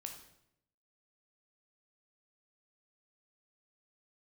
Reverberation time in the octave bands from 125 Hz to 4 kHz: 0.95 s, 0.90 s, 0.85 s, 0.75 s, 0.70 s, 0.65 s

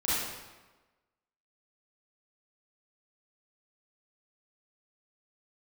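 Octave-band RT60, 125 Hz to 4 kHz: 1.1 s, 1.2 s, 1.2 s, 1.2 s, 1.1 s, 0.90 s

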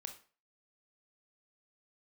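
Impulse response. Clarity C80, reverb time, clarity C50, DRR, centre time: 15.5 dB, 0.40 s, 9.5 dB, 5.0 dB, 12 ms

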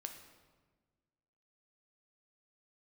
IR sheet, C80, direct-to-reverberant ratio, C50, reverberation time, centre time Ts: 9.0 dB, 4.5 dB, 7.5 dB, 1.4 s, 24 ms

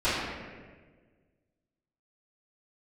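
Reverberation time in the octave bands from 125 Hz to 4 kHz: 2.0 s, 1.8 s, 1.7 s, 1.3 s, 1.4 s, 1.0 s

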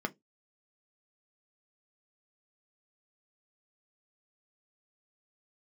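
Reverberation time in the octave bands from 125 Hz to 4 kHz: 0.20 s, 0.20 s, 0.20 s, 0.15 s, 0.15 s, 0.15 s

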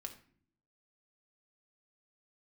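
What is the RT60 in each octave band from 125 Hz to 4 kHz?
0.95 s, 0.90 s, 0.60 s, 0.45 s, 0.45 s, 0.35 s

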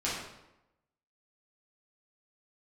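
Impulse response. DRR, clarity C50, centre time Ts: -8.5 dB, 1.0 dB, 62 ms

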